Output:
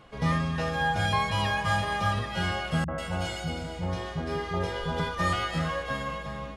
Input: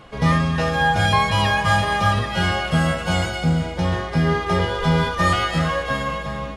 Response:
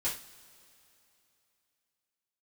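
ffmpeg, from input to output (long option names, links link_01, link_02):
-filter_complex "[0:a]asettb=1/sr,asplit=3[link_01][link_02][link_03];[link_01]atrim=end=2.844[link_04];[link_02]atrim=start=2.84:end=5,asetpts=PTS-STARTPTS,afade=type=in:duration=0.004:curve=qsin,afade=type=out:start_time=2.156:duration=0.004:curve=qsin,acrossover=split=180|1600[link_05][link_06][link_07];[link_06]adelay=40[link_08];[link_07]adelay=140[link_09];[link_05][link_08][link_09]amix=inputs=3:normalize=0,atrim=end_sample=95256[link_10];[link_03]atrim=start=4.996[link_11];[link_04][link_10]acrossfade=duration=0.004:curve1=hsin:curve2=qsin[link_12];[link_12][link_11]acrossfade=duration=0.004:curve1=qsin:curve2=hsin,volume=-8.5dB"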